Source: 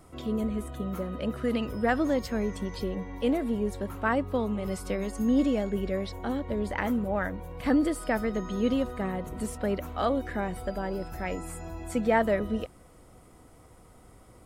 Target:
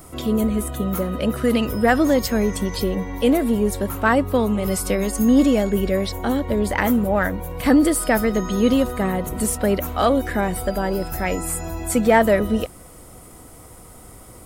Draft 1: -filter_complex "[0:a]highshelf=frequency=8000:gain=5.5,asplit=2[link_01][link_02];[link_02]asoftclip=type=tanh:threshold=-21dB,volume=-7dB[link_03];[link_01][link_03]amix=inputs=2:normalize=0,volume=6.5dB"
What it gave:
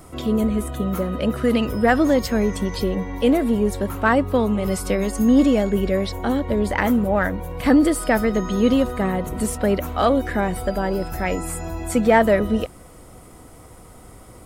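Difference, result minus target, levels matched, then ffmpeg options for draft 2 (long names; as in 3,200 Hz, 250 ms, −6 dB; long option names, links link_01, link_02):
8,000 Hz band −5.0 dB
-filter_complex "[0:a]highshelf=frequency=8000:gain=15,asplit=2[link_01][link_02];[link_02]asoftclip=type=tanh:threshold=-21dB,volume=-7dB[link_03];[link_01][link_03]amix=inputs=2:normalize=0,volume=6.5dB"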